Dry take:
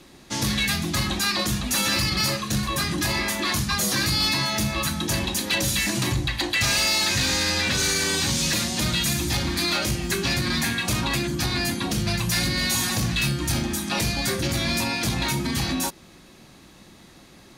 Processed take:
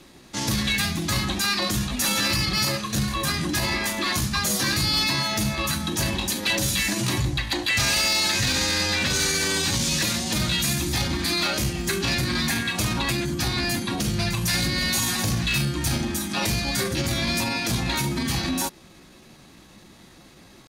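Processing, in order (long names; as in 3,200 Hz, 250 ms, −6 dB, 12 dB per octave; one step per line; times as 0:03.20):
tempo change 0.85×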